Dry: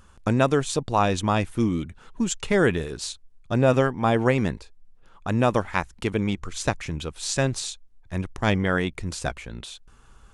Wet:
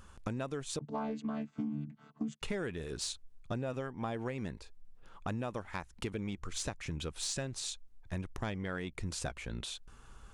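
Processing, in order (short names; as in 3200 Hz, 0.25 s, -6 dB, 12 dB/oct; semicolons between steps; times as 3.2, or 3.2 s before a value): 0.79–2.42 chord vocoder bare fifth, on D3; compressor 10:1, threshold -31 dBFS, peak gain reduction 17.5 dB; soft clip -22.5 dBFS, distortion -22 dB; gain -2 dB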